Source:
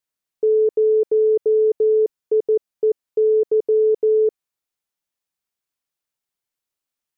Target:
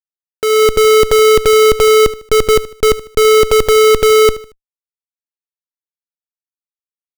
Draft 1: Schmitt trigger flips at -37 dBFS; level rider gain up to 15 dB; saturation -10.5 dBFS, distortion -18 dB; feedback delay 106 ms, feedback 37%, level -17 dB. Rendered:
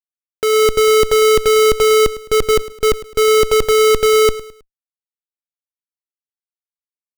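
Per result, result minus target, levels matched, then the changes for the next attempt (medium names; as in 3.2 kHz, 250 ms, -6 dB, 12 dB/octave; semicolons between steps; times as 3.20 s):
saturation: distortion +13 dB; echo 30 ms late
change: saturation -0.5 dBFS, distortion -31 dB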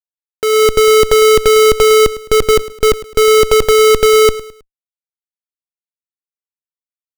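echo 30 ms late
change: feedback delay 76 ms, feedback 37%, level -17 dB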